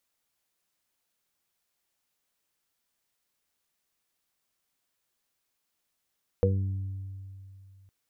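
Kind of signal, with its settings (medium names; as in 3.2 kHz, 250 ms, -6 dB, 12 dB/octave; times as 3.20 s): additive tone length 1.46 s, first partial 96.5 Hz, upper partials -6.5/-17.5/-13.5/5 dB, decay 2.71 s, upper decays 1.03/1.71/0.54/0.22 s, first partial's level -22 dB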